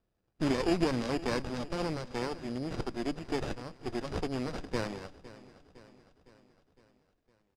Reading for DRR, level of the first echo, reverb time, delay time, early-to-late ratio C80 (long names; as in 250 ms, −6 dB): no reverb audible, −18.0 dB, no reverb audible, 509 ms, no reverb audible